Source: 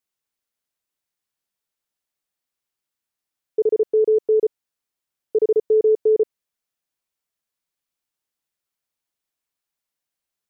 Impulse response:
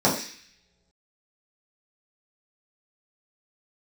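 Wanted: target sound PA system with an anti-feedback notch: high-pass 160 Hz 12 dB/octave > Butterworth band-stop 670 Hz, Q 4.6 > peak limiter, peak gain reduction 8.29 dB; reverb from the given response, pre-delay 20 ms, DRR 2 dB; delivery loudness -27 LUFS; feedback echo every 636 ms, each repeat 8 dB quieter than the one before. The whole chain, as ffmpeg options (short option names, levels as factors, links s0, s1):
-filter_complex "[0:a]aecho=1:1:636|1272|1908|2544|3180:0.398|0.159|0.0637|0.0255|0.0102,asplit=2[s0][s1];[1:a]atrim=start_sample=2205,adelay=20[s2];[s1][s2]afir=irnorm=-1:irlink=0,volume=0.106[s3];[s0][s3]amix=inputs=2:normalize=0,highpass=160,asuperstop=centerf=670:order=8:qfactor=4.6,volume=0.531,alimiter=limit=0.106:level=0:latency=1"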